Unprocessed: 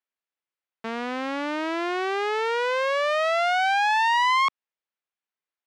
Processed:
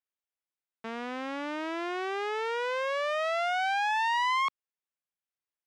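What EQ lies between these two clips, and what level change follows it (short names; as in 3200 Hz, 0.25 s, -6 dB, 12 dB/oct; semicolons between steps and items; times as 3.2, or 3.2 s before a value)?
notch 4300 Hz, Q 16; -6.5 dB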